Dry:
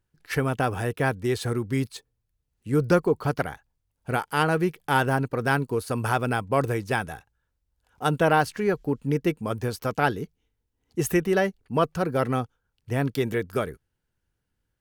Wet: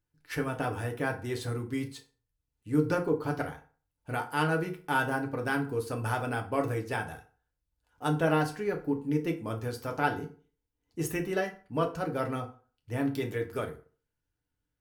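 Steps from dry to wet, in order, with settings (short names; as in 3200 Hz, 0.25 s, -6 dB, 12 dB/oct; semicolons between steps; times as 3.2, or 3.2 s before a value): FDN reverb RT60 0.4 s, low-frequency decay 0.95×, high-frequency decay 0.7×, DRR 2 dB; gain -8.5 dB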